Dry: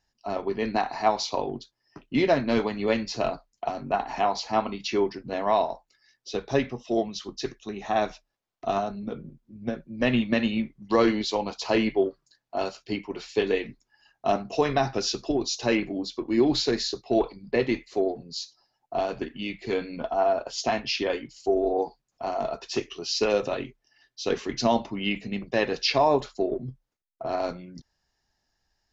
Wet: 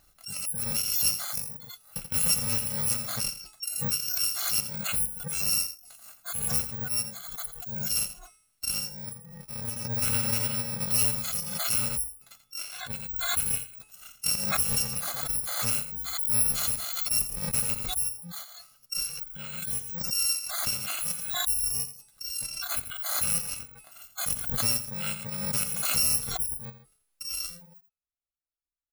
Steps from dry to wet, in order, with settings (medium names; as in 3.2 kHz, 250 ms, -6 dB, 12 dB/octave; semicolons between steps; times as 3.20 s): bit-reversed sample order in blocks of 128 samples; de-hum 431.2 Hz, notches 26; spectral noise reduction 22 dB; 11.91–12.93 s: treble shelf 3.8 kHz -5 dB; delay 85 ms -12 dB; swell ahead of each attack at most 38 dB/s; trim -4.5 dB